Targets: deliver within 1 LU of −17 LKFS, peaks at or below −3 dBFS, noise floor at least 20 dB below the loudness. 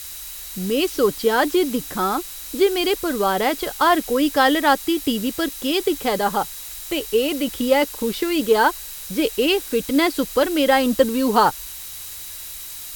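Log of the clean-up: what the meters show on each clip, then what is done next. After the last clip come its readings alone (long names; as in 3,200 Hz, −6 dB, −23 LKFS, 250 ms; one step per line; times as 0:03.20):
interfering tone 3,900 Hz; level of the tone −46 dBFS; background noise floor −35 dBFS; target noise floor −40 dBFS; integrated loudness −20.0 LKFS; sample peak −3.0 dBFS; target loudness −17.0 LKFS
→ notch filter 3,900 Hz, Q 30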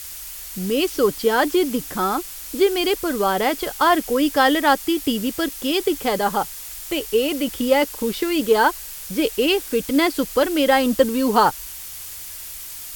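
interfering tone none found; background noise floor −35 dBFS; target noise floor −40 dBFS
→ noise reduction from a noise print 6 dB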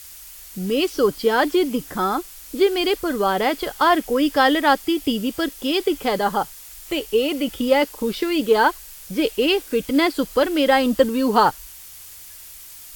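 background noise floor −41 dBFS; integrated loudness −20.5 LKFS; sample peak −3.0 dBFS; target loudness −17.0 LKFS
→ level +3.5 dB
brickwall limiter −3 dBFS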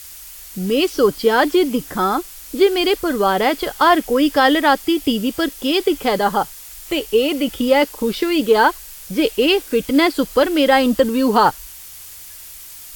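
integrated loudness −17.0 LKFS; sample peak −3.0 dBFS; background noise floor −37 dBFS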